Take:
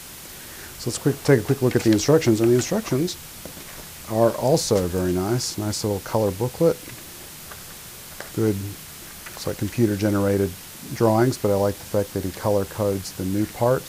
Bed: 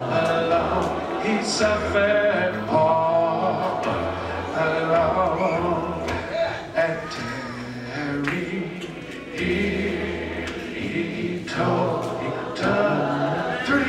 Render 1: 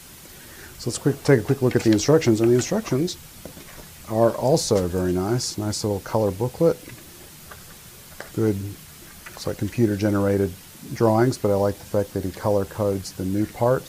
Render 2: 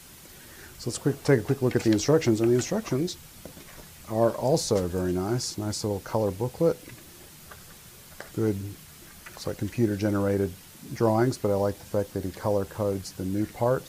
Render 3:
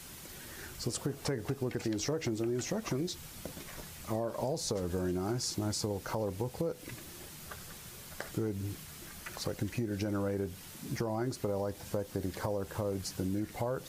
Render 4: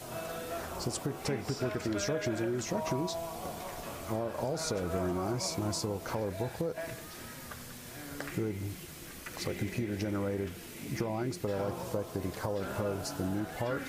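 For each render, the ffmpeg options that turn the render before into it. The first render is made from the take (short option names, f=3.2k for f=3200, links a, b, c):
-af "afftdn=nr=6:nf=-40"
-af "volume=-4.5dB"
-af "alimiter=limit=-20dB:level=0:latency=1:release=226,acompressor=threshold=-30dB:ratio=6"
-filter_complex "[1:a]volume=-19dB[a];[0:a][a]amix=inputs=2:normalize=0"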